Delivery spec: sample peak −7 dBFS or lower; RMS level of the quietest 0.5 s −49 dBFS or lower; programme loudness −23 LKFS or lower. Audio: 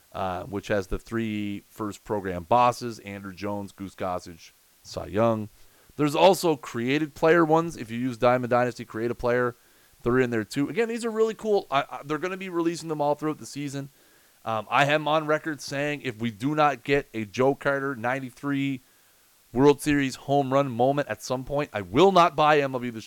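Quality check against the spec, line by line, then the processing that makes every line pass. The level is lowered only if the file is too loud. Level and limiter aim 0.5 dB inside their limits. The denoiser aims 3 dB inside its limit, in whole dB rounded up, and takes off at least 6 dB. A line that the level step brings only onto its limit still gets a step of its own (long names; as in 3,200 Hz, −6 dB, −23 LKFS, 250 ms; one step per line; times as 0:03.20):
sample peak −8.0 dBFS: in spec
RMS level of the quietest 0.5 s −60 dBFS: in spec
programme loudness −25.5 LKFS: in spec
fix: no processing needed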